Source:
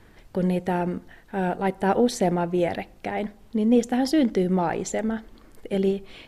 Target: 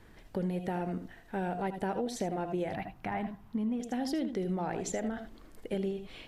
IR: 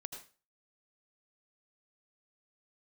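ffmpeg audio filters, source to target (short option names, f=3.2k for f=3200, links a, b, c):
-filter_complex "[1:a]atrim=start_sample=2205,afade=t=out:st=0.13:d=0.01,atrim=end_sample=6174[a];[0:a][a]afir=irnorm=-1:irlink=0,acompressor=threshold=-30dB:ratio=6,asettb=1/sr,asplit=3[b][c][d];[b]atrim=end=2.744[e];[c]atrim=start=2.74:end=3.8,asetpts=PTS-STARTPTS,afade=t=in:d=0.004:c=qsin,afade=t=out:st=1.056:d=0.004:c=qsin,equalizer=f=125:t=o:w=1:g=7,equalizer=f=500:t=o:w=1:g=-10,equalizer=f=1k:t=o:w=1:g=8,equalizer=f=4k:t=o:w=1:g=-5,equalizer=f=8k:t=o:w=1:g=-8[f];[d]atrim=start=3.796[g];[e][f]acrossfade=d=0.004:c1=hsin:c2=qsin[h];[h][g]acrossfade=d=0.004:c1=qsin:c2=hsin"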